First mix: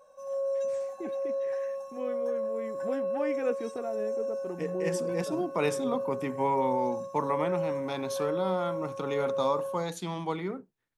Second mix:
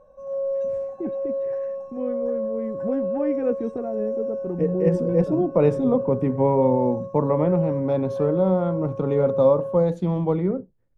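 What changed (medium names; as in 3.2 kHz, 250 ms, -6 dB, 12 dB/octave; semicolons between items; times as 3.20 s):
second voice: add peaking EQ 540 Hz +12 dB 0.35 oct; master: add tilt EQ -5.5 dB/octave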